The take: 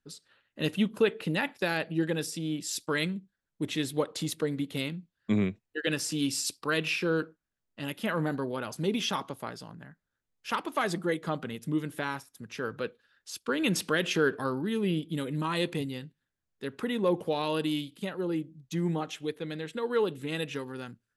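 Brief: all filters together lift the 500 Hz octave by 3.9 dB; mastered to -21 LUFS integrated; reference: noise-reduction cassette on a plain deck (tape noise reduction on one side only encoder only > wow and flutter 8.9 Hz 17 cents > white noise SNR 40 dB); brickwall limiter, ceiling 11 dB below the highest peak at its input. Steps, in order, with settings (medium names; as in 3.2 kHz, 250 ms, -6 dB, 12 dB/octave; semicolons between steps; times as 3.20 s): peaking EQ 500 Hz +4.5 dB; peak limiter -22.5 dBFS; tape noise reduction on one side only encoder only; wow and flutter 8.9 Hz 17 cents; white noise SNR 40 dB; trim +12.5 dB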